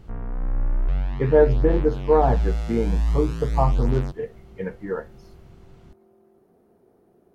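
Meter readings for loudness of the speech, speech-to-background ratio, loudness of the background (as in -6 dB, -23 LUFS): -23.5 LUFS, 3.5 dB, -27.0 LUFS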